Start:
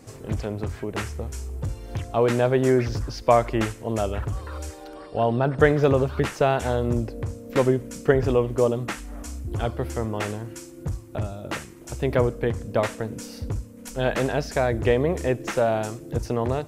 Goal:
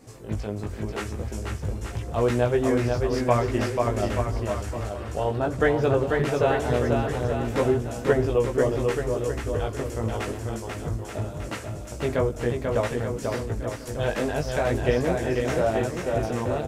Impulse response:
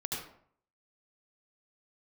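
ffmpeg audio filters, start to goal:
-af "flanger=delay=16:depth=3.7:speed=0.87,aecho=1:1:490|882|1196|1446|1647:0.631|0.398|0.251|0.158|0.1"

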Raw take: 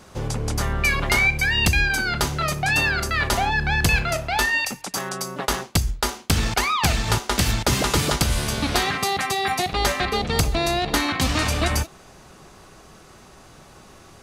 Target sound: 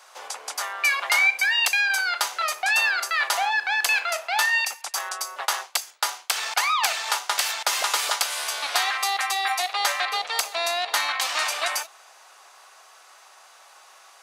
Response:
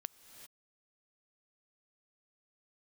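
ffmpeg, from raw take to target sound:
-af "highpass=f=710:w=0.5412,highpass=f=710:w=1.3066"

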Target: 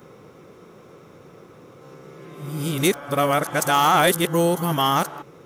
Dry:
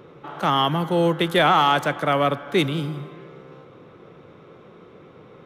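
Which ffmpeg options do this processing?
-af "areverse,aexciter=amount=7.1:drive=3.5:freq=5.1k"

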